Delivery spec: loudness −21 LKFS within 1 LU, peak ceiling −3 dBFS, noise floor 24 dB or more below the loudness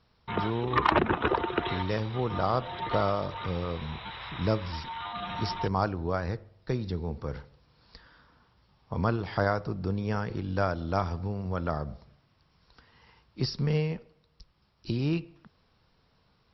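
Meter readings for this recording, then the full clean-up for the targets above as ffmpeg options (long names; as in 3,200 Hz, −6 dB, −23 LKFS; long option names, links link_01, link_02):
integrated loudness −30.5 LKFS; sample peak −11.0 dBFS; target loudness −21.0 LKFS
→ -af "volume=9.5dB,alimiter=limit=-3dB:level=0:latency=1"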